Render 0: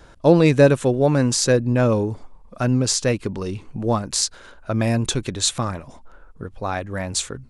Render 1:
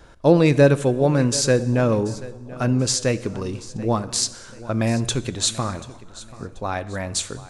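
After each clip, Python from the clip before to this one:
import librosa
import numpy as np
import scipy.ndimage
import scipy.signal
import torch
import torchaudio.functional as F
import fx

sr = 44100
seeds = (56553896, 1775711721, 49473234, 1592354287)

y = fx.echo_feedback(x, sr, ms=735, feedback_pct=38, wet_db=-18.5)
y = fx.rev_plate(y, sr, seeds[0], rt60_s=1.2, hf_ratio=0.9, predelay_ms=0, drr_db=15.0)
y = y * 10.0 ** (-1.0 / 20.0)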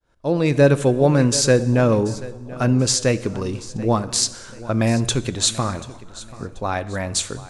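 y = fx.fade_in_head(x, sr, length_s=0.83)
y = y * 10.0 ** (2.5 / 20.0)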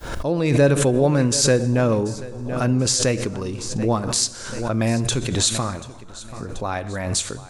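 y = fx.high_shelf(x, sr, hz=8400.0, db=4.0)
y = fx.pre_swell(y, sr, db_per_s=45.0)
y = y * 10.0 ** (-2.5 / 20.0)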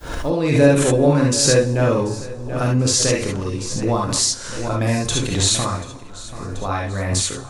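y = fx.rev_gated(x, sr, seeds[1], gate_ms=90, shape='rising', drr_db=-1.5)
y = y * 10.0 ** (-1.0 / 20.0)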